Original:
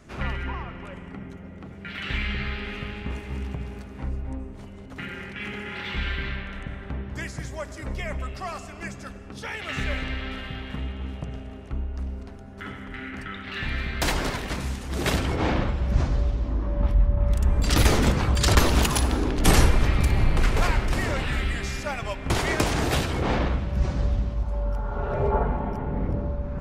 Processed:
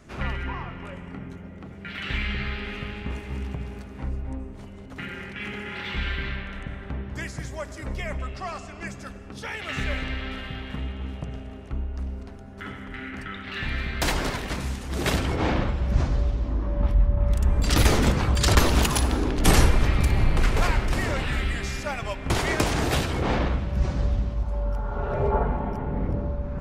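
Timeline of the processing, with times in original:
0:00.49–0:01.47: double-tracking delay 22 ms −7.5 dB
0:08.18–0:08.87: low-pass filter 7,700 Hz

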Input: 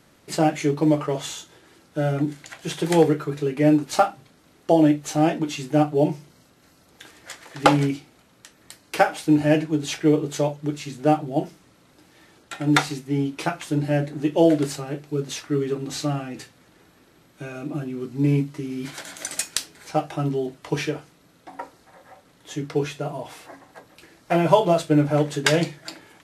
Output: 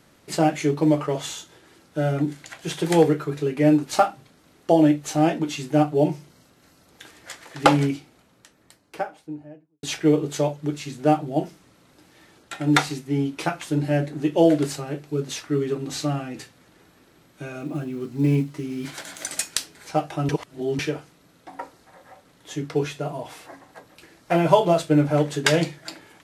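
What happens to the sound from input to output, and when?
0:07.78–0:09.83: fade out and dull
0:17.59–0:19.32: one scale factor per block 7 bits
0:20.29–0:20.79: reverse

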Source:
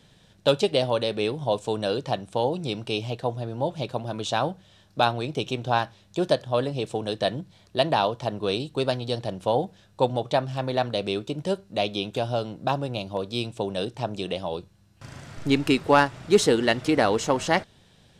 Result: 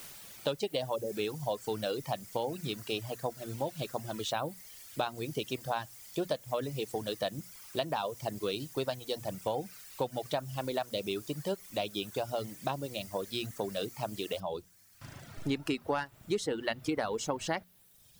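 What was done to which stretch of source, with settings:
0:00.96–0:01.17: time-frequency box erased 900–9,300 Hz
0:14.40: noise floor change −43 dB −54 dB
whole clip: mains-hum notches 60/120/180/240 Hz; reverb reduction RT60 1.1 s; downward compressor 6 to 1, threshold −24 dBFS; level −4.5 dB

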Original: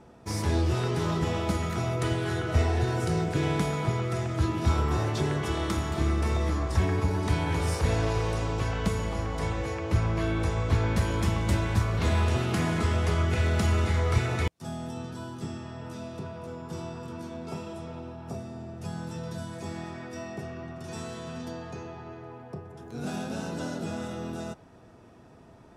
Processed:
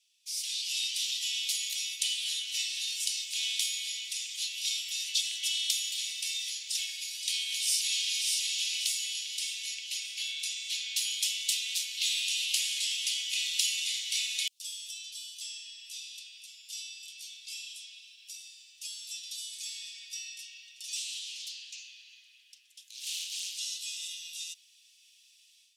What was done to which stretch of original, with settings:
0:07.32–0:08.25: delay throw 590 ms, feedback 50%, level −3.5 dB
0:20.95–0:23.60: highs frequency-modulated by the lows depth 0.36 ms
whole clip: Butterworth high-pass 2,800 Hz 48 dB per octave; automatic gain control gain up to 11 dB; level +1 dB

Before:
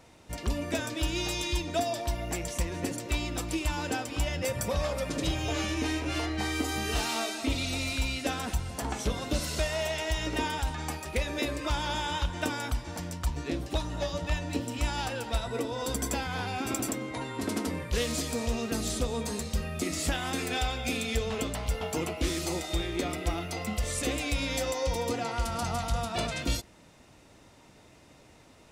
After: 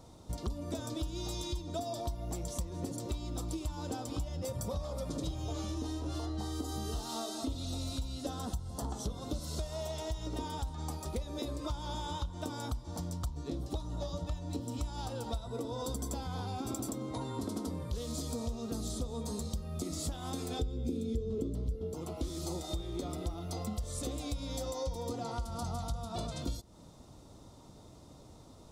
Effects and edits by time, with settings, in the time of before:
0:05.75–0:09.09: notch filter 2,300 Hz, Q 5.4
0:20.59–0:21.94: low shelf with overshoot 560 Hz +13 dB, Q 3
whole clip: low-shelf EQ 230 Hz +7 dB; downward compressor, threshold −33 dBFS; flat-topped bell 2,100 Hz −13 dB 1.1 octaves; level −1 dB

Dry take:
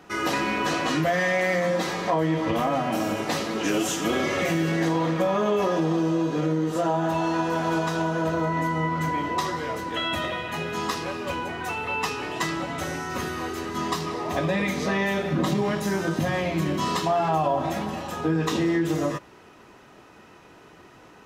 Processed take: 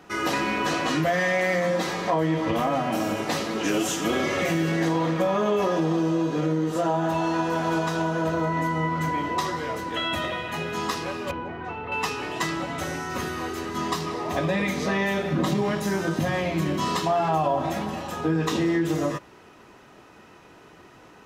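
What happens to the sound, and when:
0:11.31–0:11.92: head-to-tape spacing loss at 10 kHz 34 dB

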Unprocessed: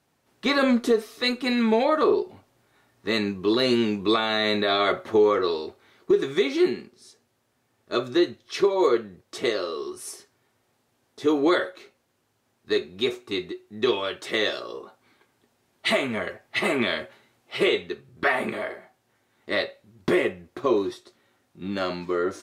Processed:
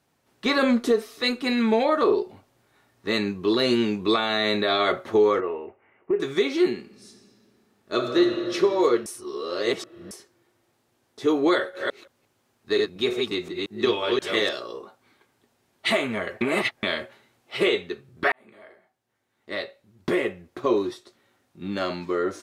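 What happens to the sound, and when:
0:05.40–0:06.20: Chebyshev low-pass with heavy ripple 2,900 Hz, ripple 6 dB
0:06.79–0:08.54: thrown reverb, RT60 2.9 s, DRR 3 dB
0:09.06–0:10.11: reverse
0:11.55–0:14.49: delay that plays each chunk backwards 176 ms, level −2 dB
0:16.41–0:16.83: reverse
0:18.32–0:20.70: fade in

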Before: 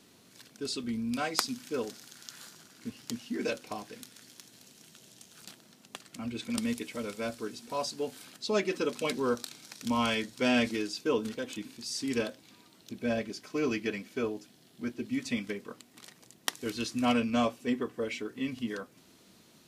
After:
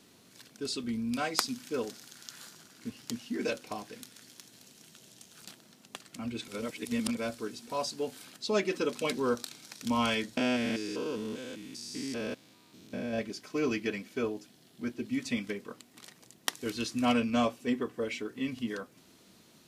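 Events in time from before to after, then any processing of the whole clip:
0:06.48–0:07.17: reverse
0:10.37–0:13.19: spectrum averaged block by block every 200 ms

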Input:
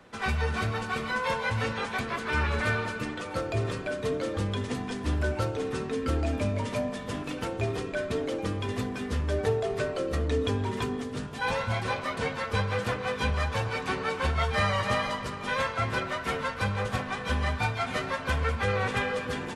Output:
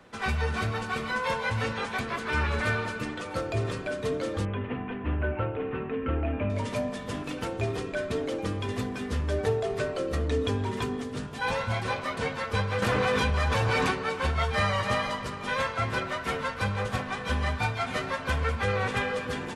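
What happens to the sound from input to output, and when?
0:04.45–0:06.50: elliptic low-pass filter 2,800 Hz, stop band 60 dB
0:12.82–0:13.91: envelope flattener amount 100%

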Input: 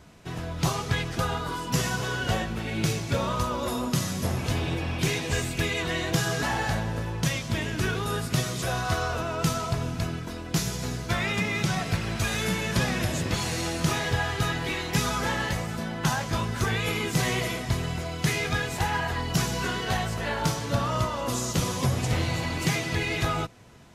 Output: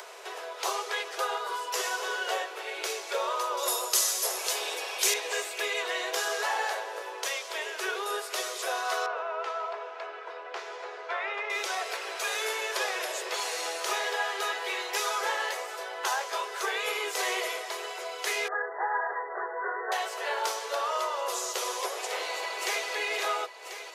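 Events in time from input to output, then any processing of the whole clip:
0:03.57–0:05.14: bass and treble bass −6 dB, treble +13 dB
0:09.06–0:11.50: band-pass filter 430–2,100 Hz
0:18.48–0:19.92: linear-phase brick-wall low-pass 2,000 Hz
0:22.06–0:22.86: delay throw 520 ms, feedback 60%, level −9.5 dB
whole clip: Butterworth high-pass 380 Hz 96 dB per octave; parametric band 990 Hz +2 dB; upward compression, threshold −33 dBFS; level −1.5 dB

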